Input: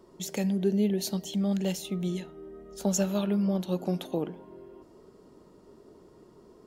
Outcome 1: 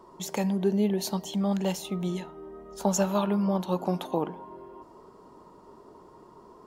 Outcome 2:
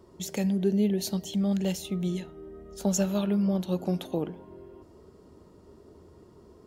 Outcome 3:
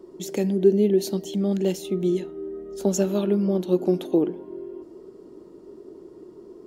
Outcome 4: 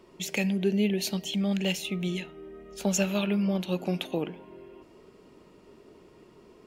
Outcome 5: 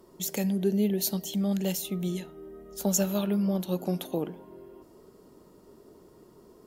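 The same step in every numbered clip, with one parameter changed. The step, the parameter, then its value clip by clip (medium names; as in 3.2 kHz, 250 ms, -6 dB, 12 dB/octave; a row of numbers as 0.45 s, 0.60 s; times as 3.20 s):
peaking EQ, frequency: 980 Hz, 78 Hz, 350 Hz, 2.5 kHz, 14 kHz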